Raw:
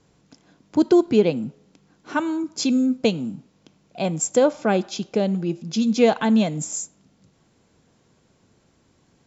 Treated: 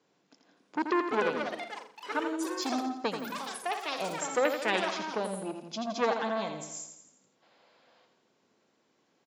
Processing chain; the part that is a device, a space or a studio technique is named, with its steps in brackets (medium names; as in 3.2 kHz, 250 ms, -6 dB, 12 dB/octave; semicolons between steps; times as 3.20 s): public-address speaker with an overloaded transformer (transformer saturation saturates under 1.2 kHz; band-pass 320–5500 Hz); 4.45–4.90 s: high-order bell 3 kHz +13 dB; 7.42–8.05 s: time-frequency box 480–5200 Hz +10 dB; feedback delay 84 ms, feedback 52%, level -7.5 dB; ever faster or slower copies 568 ms, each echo +6 st, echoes 3, each echo -6 dB; trim -7 dB